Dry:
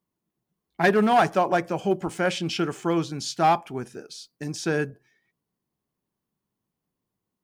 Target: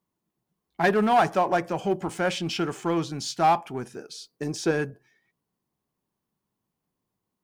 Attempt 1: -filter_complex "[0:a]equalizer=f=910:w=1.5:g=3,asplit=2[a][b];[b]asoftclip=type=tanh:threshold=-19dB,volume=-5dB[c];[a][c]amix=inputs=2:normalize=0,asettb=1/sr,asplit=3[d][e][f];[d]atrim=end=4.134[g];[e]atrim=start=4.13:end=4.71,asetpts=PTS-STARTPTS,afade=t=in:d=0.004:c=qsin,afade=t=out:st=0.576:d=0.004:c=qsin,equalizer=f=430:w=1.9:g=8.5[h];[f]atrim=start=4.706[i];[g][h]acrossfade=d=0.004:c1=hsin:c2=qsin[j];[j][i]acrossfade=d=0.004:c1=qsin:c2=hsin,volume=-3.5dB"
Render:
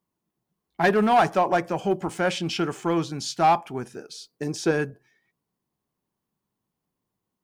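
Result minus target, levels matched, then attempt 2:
soft clip: distortion -7 dB
-filter_complex "[0:a]equalizer=f=910:w=1.5:g=3,asplit=2[a][b];[b]asoftclip=type=tanh:threshold=-30dB,volume=-5dB[c];[a][c]amix=inputs=2:normalize=0,asettb=1/sr,asplit=3[d][e][f];[d]atrim=end=4.134[g];[e]atrim=start=4.13:end=4.71,asetpts=PTS-STARTPTS,afade=t=in:d=0.004:c=qsin,afade=t=out:st=0.576:d=0.004:c=qsin,equalizer=f=430:w=1.9:g=8.5[h];[f]atrim=start=4.706[i];[g][h]acrossfade=d=0.004:c1=hsin:c2=qsin[j];[j][i]acrossfade=d=0.004:c1=qsin:c2=hsin,volume=-3.5dB"

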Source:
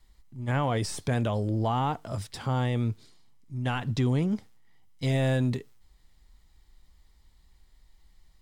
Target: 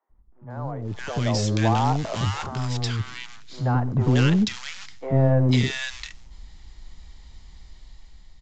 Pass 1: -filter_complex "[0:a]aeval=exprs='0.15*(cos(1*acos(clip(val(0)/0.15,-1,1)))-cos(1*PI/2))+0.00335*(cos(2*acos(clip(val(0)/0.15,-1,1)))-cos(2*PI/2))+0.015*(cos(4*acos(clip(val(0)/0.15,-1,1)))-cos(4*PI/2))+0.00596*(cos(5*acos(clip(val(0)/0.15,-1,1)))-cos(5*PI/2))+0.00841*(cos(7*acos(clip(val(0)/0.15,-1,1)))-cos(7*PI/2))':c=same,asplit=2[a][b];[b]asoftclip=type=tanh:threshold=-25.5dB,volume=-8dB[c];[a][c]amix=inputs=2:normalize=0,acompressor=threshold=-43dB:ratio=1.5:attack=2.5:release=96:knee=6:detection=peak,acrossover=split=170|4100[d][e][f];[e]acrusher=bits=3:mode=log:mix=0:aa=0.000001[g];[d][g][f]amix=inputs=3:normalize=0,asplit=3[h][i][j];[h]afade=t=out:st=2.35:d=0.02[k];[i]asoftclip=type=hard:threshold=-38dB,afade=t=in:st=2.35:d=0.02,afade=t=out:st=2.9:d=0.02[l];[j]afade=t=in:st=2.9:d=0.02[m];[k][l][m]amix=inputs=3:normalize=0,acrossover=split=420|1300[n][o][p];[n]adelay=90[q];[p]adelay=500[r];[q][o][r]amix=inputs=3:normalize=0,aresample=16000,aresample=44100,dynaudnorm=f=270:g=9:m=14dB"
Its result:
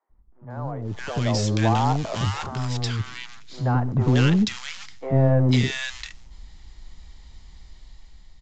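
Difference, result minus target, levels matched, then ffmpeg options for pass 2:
soft clip: distortion -5 dB
-filter_complex "[0:a]aeval=exprs='0.15*(cos(1*acos(clip(val(0)/0.15,-1,1)))-cos(1*PI/2))+0.00335*(cos(2*acos(clip(val(0)/0.15,-1,1)))-cos(2*PI/2))+0.015*(cos(4*acos(clip(val(0)/0.15,-1,1)))-cos(4*PI/2))+0.00596*(cos(5*acos(clip(val(0)/0.15,-1,1)))-cos(5*PI/2))+0.00841*(cos(7*acos(clip(val(0)/0.15,-1,1)))-cos(7*PI/2))':c=same,asplit=2[a][b];[b]asoftclip=type=tanh:threshold=-32dB,volume=-8dB[c];[a][c]amix=inputs=2:normalize=0,acompressor=threshold=-43dB:ratio=1.5:attack=2.5:release=96:knee=6:detection=peak,acrossover=split=170|4100[d][e][f];[e]acrusher=bits=3:mode=log:mix=0:aa=0.000001[g];[d][g][f]amix=inputs=3:normalize=0,asplit=3[h][i][j];[h]afade=t=out:st=2.35:d=0.02[k];[i]asoftclip=type=hard:threshold=-38dB,afade=t=in:st=2.35:d=0.02,afade=t=out:st=2.9:d=0.02[l];[j]afade=t=in:st=2.9:d=0.02[m];[k][l][m]amix=inputs=3:normalize=0,acrossover=split=420|1300[n][o][p];[n]adelay=90[q];[p]adelay=500[r];[q][o][r]amix=inputs=3:normalize=0,aresample=16000,aresample=44100,dynaudnorm=f=270:g=9:m=14dB"

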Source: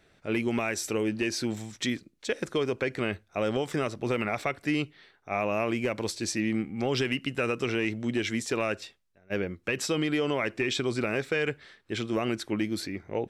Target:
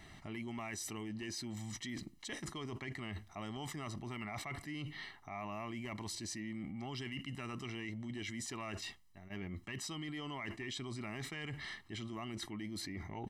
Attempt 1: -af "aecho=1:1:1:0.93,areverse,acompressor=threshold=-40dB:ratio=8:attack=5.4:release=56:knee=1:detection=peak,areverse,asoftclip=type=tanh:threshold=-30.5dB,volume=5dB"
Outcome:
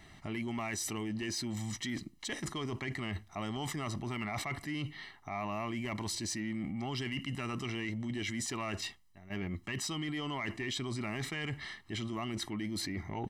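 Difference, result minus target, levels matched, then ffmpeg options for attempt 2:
compressor: peak gain reduction -6.5 dB
-af "aecho=1:1:1:0.93,areverse,acompressor=threshold=-47.5dB:ratio=8:attack=5.4:release=56:knee=1:detection=peak,areverse,asoftclip=type=tanh:threshold=-30.5dB,volume=5dB"

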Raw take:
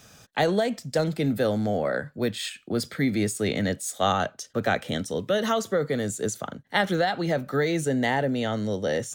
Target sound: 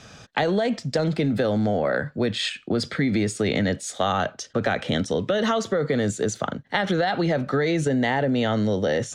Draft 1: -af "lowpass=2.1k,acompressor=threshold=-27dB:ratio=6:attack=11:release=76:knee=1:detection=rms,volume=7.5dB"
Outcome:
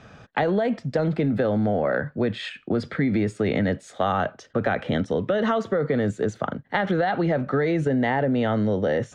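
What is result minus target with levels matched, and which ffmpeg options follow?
4000 Hz band -8.0 dB
-af "lowpass=5.1k,acompressor=threshold=-27dB:ratio=6:attack=11:release=76:knee=1:detection=rms,volume=7.5dB"

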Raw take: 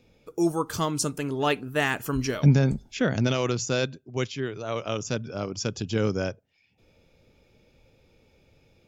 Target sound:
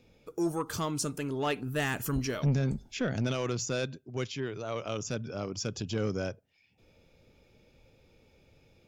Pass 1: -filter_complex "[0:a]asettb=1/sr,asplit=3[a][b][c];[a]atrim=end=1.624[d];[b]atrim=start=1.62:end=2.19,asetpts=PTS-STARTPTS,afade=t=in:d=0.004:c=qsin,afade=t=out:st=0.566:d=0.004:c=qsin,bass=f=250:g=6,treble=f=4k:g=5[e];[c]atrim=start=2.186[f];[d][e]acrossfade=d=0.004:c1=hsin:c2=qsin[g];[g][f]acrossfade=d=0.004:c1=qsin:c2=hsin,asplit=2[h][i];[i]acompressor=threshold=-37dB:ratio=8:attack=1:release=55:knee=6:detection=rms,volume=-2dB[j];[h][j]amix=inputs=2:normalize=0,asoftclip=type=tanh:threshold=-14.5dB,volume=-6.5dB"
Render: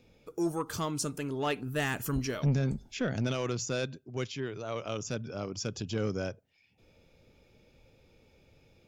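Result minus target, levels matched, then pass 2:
compressor: peak gain reduction +5.5 dB
-filter_complex "[0:a]asettb=1/sr,asplit=3[a][b][c];[a]atrim=end=1.624[d];[b]atrim=start=1.62:end=2.19,asetpts=PTS-STARTPTS,afade=t=in:d=0.004:c=qsin,afade=t=out:st=0.566:d=0.004:c=qsin,bass=f=250:g=6,treble=f=4k:g=5[e];[c]atrim=start=2.186[f];[d][e]acrossfade=d=0.004:c1=hsin:c2=qsin[g];[g][f]acrossfade=d=0.004:c1=qsin:c2=hsin,asplit=2[h][i];[i]acompressor=threshold=-30.5dB:ratio=8:attack=1:release=55:knee=6:detection=rms,volume=-2dB[j];[h][j]amix=inputs=2:normalize=0,asoftclip=type=tanh:threshold=-14.5dB,volume=-6.5dB"

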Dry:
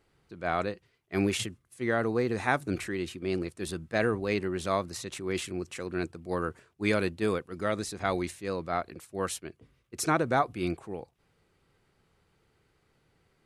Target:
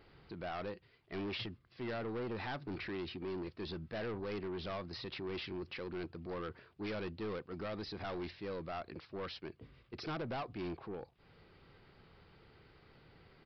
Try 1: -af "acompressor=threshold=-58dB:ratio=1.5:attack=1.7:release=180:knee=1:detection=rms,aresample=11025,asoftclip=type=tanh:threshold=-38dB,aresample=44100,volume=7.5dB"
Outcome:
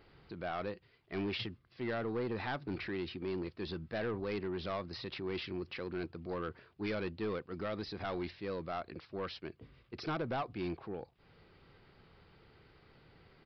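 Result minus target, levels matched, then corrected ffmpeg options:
soft clip: distortion -4 dB
-af "acompressor=threshold=-58dB:ratio=1.5:attack=1.7:release=180:knee=1:detection=rms,aresample=11025,asoftclip=type=tanh:threshold=-44dB,aresample=44100,volume=7.5dB"

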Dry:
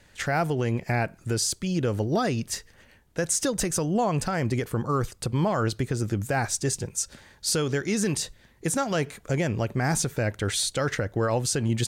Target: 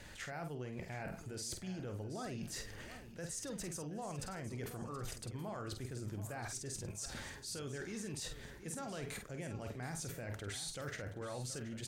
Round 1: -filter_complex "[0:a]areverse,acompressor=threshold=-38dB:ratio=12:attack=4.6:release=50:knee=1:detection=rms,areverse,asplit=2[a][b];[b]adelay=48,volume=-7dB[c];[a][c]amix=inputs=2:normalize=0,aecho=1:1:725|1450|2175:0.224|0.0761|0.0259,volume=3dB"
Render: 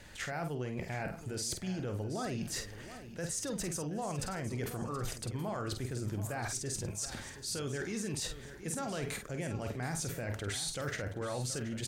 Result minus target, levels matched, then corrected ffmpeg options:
compressor: peak gain reduction -6.5 dB
-filter_complex "[0:a]areverse,acompressor=threshold=-45dB:ratio=12:attack=4.6:release=50:knee=1:detection=rms,areverse,asplit=2[a][b];[b]adelay=48,volume=-7dB[c];[a][c]amix=inputs=2:normalize=0,aecho=1:1:725|1450|2175:0.224|0.0761|0.0259,volume=3dB"

